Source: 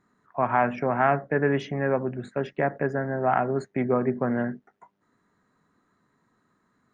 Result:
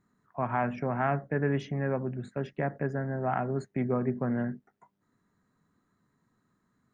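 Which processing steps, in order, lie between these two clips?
tone controls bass +8 dB, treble +4 dB; trim -7.5 dB

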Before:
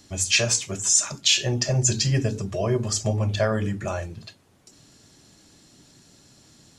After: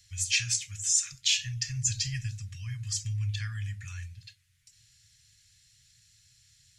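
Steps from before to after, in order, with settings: elliptic band-stop 110–1900 Hz, stop band 70 dB; trim -5.5 dB

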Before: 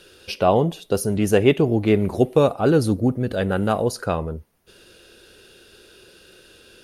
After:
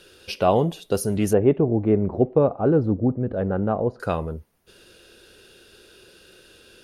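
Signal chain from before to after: 1.33–4.00 s: low-pass 1 kHz 12 dB/octave; trim -1.5 dB

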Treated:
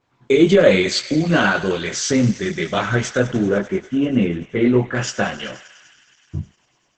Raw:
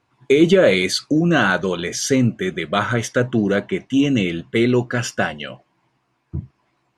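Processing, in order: 3.50–4.95 s: low-pass 1.8 kHz 12 dB/octave; chorus voices 4, 1.4 Hz, delay 22 ms, depth 3 ms; thinning echo 98 ms, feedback 84%, high-pass 870 Hz, level -15 dB; trim +4 dB; Opus 12 kbps 48 kHz

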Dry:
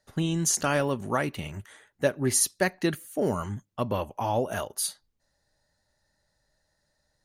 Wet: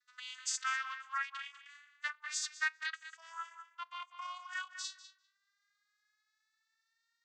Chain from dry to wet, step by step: vocoder on a note that slides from B3, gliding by +11 st; steep high-pass 1.2 kHz 48 dB/octave; filtered feedback delay 198 ms, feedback 16%, low-pass 3.1 kHz, level -9 dB; trim +4.5 dB

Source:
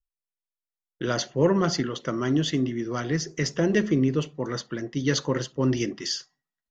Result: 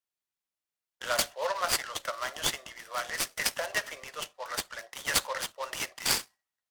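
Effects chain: Chebyshev high-pass 570 Hz, order 5; tilt EQ +1.5 dB/octave; delay time shaken by noise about 3.1 kHz, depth 0.037 ms

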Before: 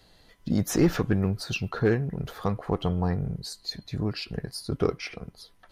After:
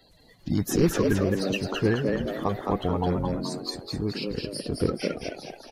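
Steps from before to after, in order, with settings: coarse spectral quantiser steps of 30 dB; on a send: frequency-shifting echo 215 ms, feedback 45%, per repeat +94 Hz, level -4 dB

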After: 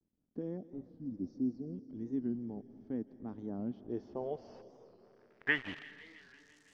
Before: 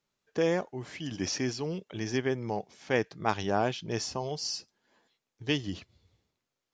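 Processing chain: pre-emphasis filter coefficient 0.97; spectral selection erased 0.57–1.74 s, 780–3500 Hz; graphic EQ with 31 bands 250 Hz +6 dB, 2.5 kHz -10 dB, 4 kHz -7 dB, 6.3 kHz +4 dB; in parallel at +0.5 dB: peak limiter -34 dBFS, peak gain reduction 10.5 dB; on the sum: low-pass sweep 4.6 kHz -> 1.4 kHz, 3.64–5.72 s; bit crusher 9-bit; crackle 280 per s -63 dBFS; low-pass sweep 250 Hz -> 7.5 kHz, 3.66–6.61 s; feedback echo behind a high-pass 167 ms, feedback 72%, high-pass 4.1 kHz, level -9 dB; on a send at -16 dB: reverberation RT60 3.5 s, pre-delay 115 ms; on the sum: warped record 45 rpm, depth 160 cents; trim +8.5 dB

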